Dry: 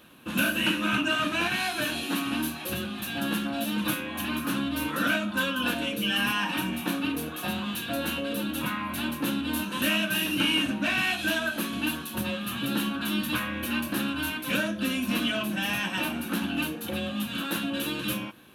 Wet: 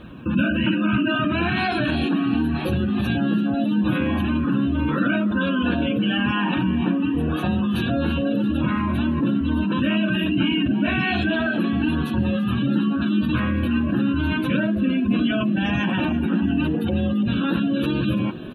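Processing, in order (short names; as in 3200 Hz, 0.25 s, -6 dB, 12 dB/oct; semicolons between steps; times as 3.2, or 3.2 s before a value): LPF 11000 Hz 12 dB/oct; spectral gate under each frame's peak -20 dB strong; RIAA curve playback; in parallel at 0 dB: negative-ratio compressor -31 dBFS, ratio -1; on the sum: requantised 12-bit, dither none; on a send: frequency-shifting echo 0.337 s, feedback 59%, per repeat +40 Hz, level -16 dB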